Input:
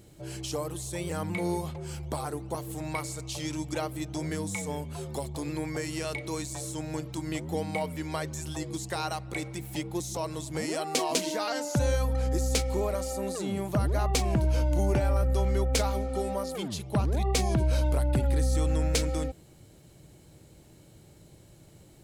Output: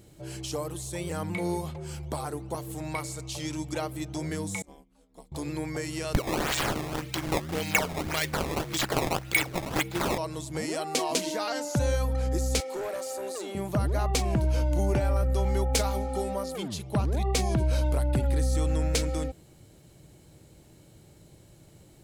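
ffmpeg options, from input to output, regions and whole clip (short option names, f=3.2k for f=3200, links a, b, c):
-filter_complex "[0:a]asettb=1/sr,asplit=3[a][b][c];[a]atrim=end=4.624[d];[b]atrim=start=4.62:end=5.32,asetpts=PTS-STARTPTS,afade=t=in:d=0.004:c=qsin,afade=t=out:st=0.696:d=0.004:c=qsin,agate=range=-33dB:threshold=-24dB:ratio=3:release=100:detection=peak,equalizer=f=490:t=o:w=0.3:g=-4.5,aeval=exprs='val(0)*sin(2*PI*110*n/s)':c=same[e];[c]atrim=start=5.316[f];[d][e]acrossfade=d=0.004:c1=hsin:c2=qsin[g];[g][f]acrossfade=d=0.004:c1=qsin:c2=hsin,asettb=1/sr,asplit=3[h][i][j];[h]atrim=end=6.144[k];[i]atrim=start=6.14:end=10.18,asetpts=PTS-STARTPTS,afade=t=in:d=0.004:c=qsin,afade=t=out:st=4.036:d=0.004:c=qsin,highshelf=f=1.5k:t=q:w=1.5:g=11.5,acrusher=samples=17:mix=1:aa=0.000001:lfo=1:lforange=27.2:lforate=1.8[l];[j]atrim=start=10.176[m];[k][l]acrossfade=d=0.004:c1=hsin:c2=qsin[n];[n][m]acrossfade=d=0.004:c1=qsin:c2=hsin,asettb=1/sr,asplit=3[o][p][q];[o]atrim=end=12.604[r];[p]atrim=start=12.6:end=13.55,asetpts=PTS-STARTPTS,afade=t=in:d=0.004:c=qsin,afade=t=out:st=0.946:d=0.004:c=qsin,highpass=f=330:w=0.5412,highpass=f=330:w=1.3066,volume=30dB,asoftclip=hard,volume=-30dB[s];[q]atrim=start=13.546[t];[r][s]acrossfade=d=0.004:c1=hsin:c2=qsin[u];[u][t]acrossfade=d=0.004:c1=qsin:c2=hsin,asettb=1/sr,asplit=3[v][w][x];[v]atrim=end=15.454[y];[w]atrim=start=15.45:end=16.24,asetpts=PTS-STARTPTS,afade=t=in:d=0.004:c=qsin,afade=t=out:st=0.786:d=0.004:c=qsin,highshelf=f=6.7k:g=4.5,aeval=exprs='val(0)+0.0112*sin(2*PI*830*n/s)':c=same[z];[x]atrim=start=16.236[aa];[y][z]acrossfade=d=0.004:c1=hsin:c2=qsin[ab];[ab][aa]acrossfade=d=0.004:c1=qsin:c2=hsin"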